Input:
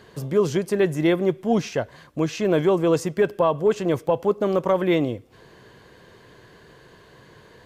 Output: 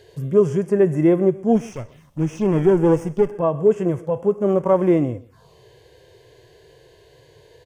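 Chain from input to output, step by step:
0:01.55–0:03.32: lower of the sound and its delayed copy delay 0.33 ms
0:04.49–0:05.03: slack as between gear wheels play −38.5 dBFS
phaser swept by the level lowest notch 180 Hz, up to 4,000 Hz, full sweep at −21.5 dBFS
harmonic and percussive parts rebalanced percussive −14 dB
on a send: single-tap delay 130 ms −21.5 dB
on the sum: level +5 dB

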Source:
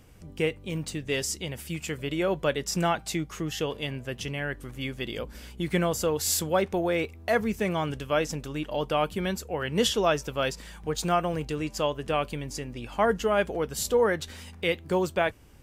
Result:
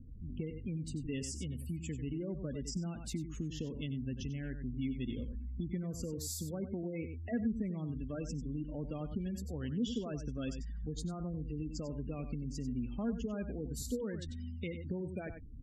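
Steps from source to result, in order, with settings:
gate on every frequency bin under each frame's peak −15 dB strong
guitar amp tone stack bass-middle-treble 10-0-1
on a send: single-tap delay 94 ms −10.5 dB
on the sum: downward compressor, threshold −50 dBFS, peak gain reduction 10.5 dB
parametric band 250 Hz +13 dB 0.4 octaves
level +12.5 dB

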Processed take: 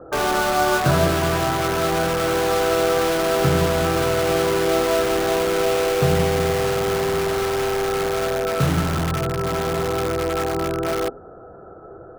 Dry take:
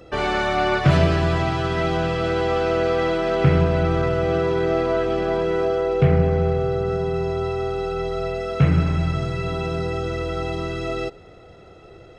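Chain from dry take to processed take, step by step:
Chebyshev low-pass filter 1,700 Hz, order 10
low-shelf EQ 180 Hz −9 dB
mains-hum notches 50/100/150/200/250/300/350 Hz
in parallel at −3 dB: wrap-around overflow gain 23.5 dB
on the sum: level +3 dB

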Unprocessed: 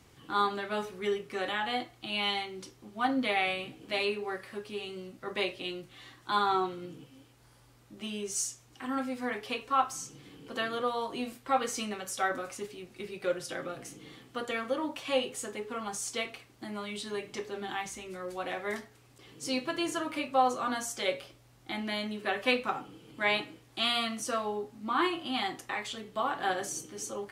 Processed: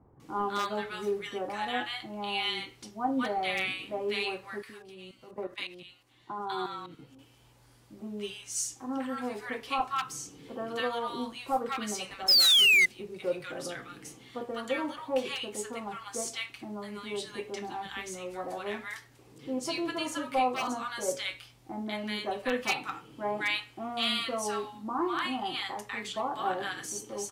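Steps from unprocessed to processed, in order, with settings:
parametric band 900 Hz +4 dB 0.43 octaves
0:04.62–0:06.99: output level in coarse steps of 16 dB
0:12.08–0:12.66: sound drawn into the spectrogram fall 2,000–5,300 Hz −19 dBFS
wave folding −17 dBFS
multiband delay without the direct sound lows, highs 200 ms, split 1,100 Hz

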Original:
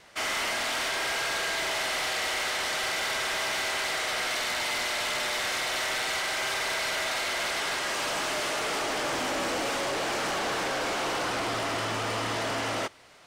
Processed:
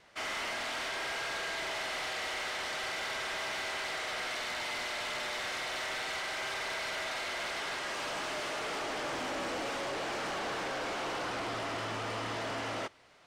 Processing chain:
high-shelf EQ 7,600 Hz −10 dB
level −6 dB

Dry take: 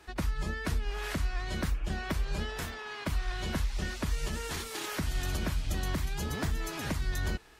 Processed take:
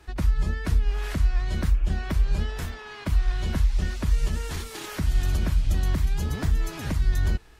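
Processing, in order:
low-shelf EQ 150 Hz +11.5 dB

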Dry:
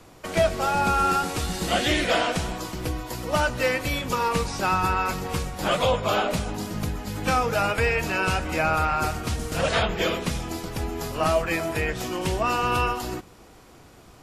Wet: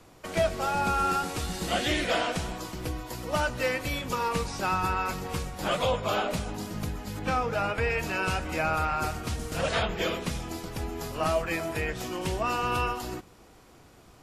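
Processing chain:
0:07.19–0:07.90: low-pass filter 3,300 Hz 6 dB per octave
level −4.5 dB

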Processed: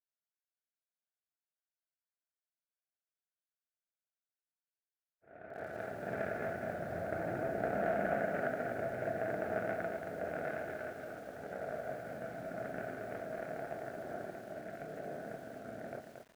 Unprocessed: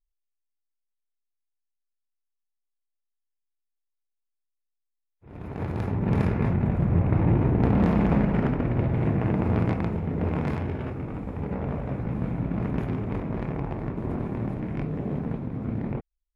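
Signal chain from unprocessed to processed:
0:14.24–0:14.81: compressor whose output falls as the input rises −32 dBFS, ratio −0.5
pair of resonant band-passes 1,000 Hz, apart 1.2 octaves
feedback echo at a low word length 227 ms, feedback 35%, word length 10 bits, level −6 dB
level +3 dB

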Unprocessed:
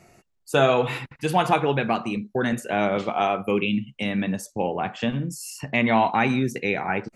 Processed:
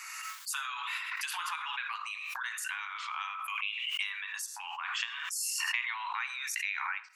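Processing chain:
downward compressor 5 to 1, threshold −32 dBFS, peak gain reduction 16.5 dB
Butterworth high-pass 1,000 Hz 72 dB per octave
convolution reverb RT60 0.35 s, pre-delay 20 ms, DRR 16.5 dB
background raised ahead of every attack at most 22 dB per second
level +3.5 dB

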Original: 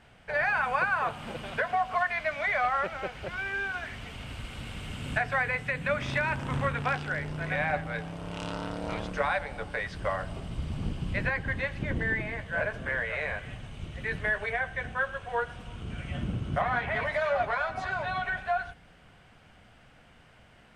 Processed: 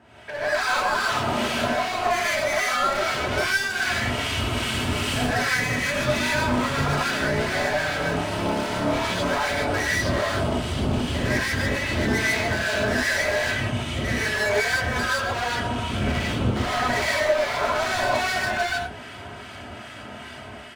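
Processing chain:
high-pass filter 83 Hz 24 dB per octave
comb filter 3.1 ms, depth 56%
brickwall limiter −27 dBFS, peak gain reduction 12.5 dB
automatic gain control gain up to 9 dB
hard clipping −31.5 dBFS, distortion −6 dB
two-band tremolo in antiphase 2.5 Hz, depth 70%, crossover 1,300 Hz
reverb whose tail is shaped and stops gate 180 ms rising, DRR −6 dB
level +6 dB

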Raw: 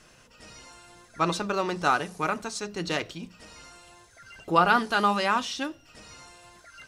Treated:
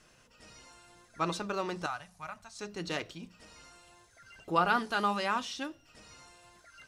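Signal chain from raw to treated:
0:01.86–0:02.59: drawn EQ curve 100 Hz 0 dB, 410 Hz −29 dB, 630 Hz −8 dB
level −6.5 dB

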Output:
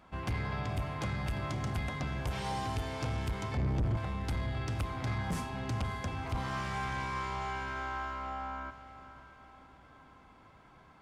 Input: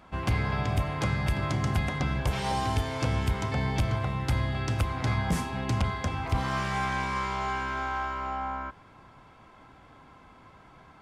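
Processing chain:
0:03.57–0:03.97: spectral tilt −3 dB per octave
feedback delay with all-pass diffusion 562 ms, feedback 45%, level −14 dB
soft clipping −21.5 dBFS, distortion −9 dB
level −5.5 dB

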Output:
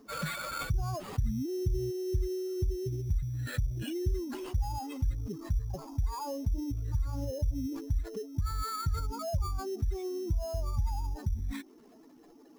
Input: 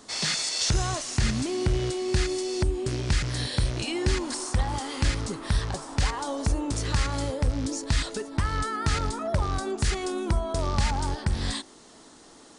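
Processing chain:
expanding power law on the bin magnitudes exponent 2.4
treble cut that deepens with the level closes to 1,800 Hz, closed at −20.5 dBFS
sample-rate reduction 5,800 Hz, jitter 0%
level −5 dB

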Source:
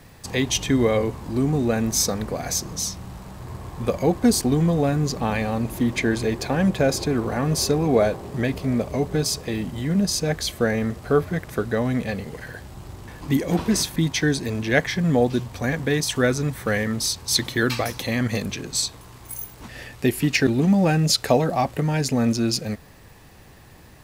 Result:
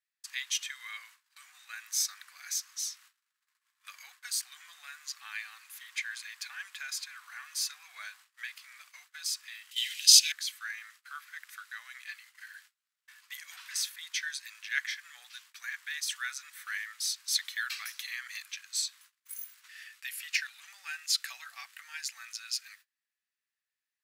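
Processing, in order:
Butterworth high-pass 1,400 Hz 36 dB per octave
noise gate −48 dBFS, range −29 dB
0:09.71–0:10.32: high shelf with overshoot 2,000 Hz +14 dB, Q 3
level −8 dB

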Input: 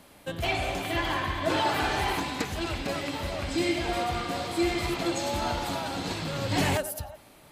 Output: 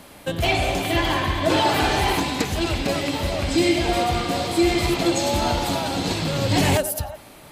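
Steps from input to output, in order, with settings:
dynamic equaliser 1,400 Hz, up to −5 dB, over −42 dBFS, Q 1
boost into a limiter +17 dB
level −8 dB

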